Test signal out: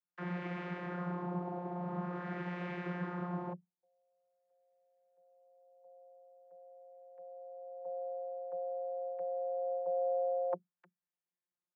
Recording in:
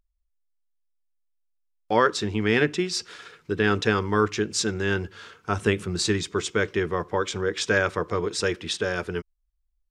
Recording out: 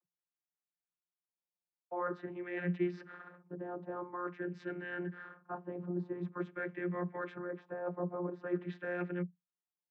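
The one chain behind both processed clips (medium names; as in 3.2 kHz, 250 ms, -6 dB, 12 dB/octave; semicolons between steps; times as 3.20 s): frequency shift +25 Hz; reverse; compression 10:1, threshold -29 dBFS; reverse; LFO low-pass sine 0.47 Hz 840–2100 Hz; vocoder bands 32, saw 177 Hz; trim -5.5 dB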